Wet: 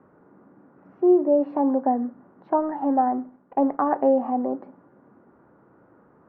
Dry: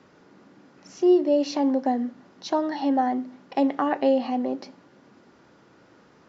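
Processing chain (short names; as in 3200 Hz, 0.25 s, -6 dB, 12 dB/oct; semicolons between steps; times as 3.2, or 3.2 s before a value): 2.57–3.89 G.711 law mismatch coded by A; LPF 1400 Hz 24 dB/oct; dynamic EQ 920 Hz, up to +4 dB, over -34 dBFS, Q 0.95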